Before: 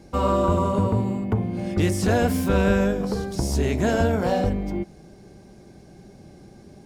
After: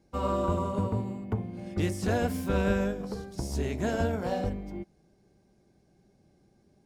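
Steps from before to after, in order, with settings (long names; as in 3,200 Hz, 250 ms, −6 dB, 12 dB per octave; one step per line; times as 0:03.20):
expander for the loud parts 1.5 to 1, over −40 dBFS
level −6 dB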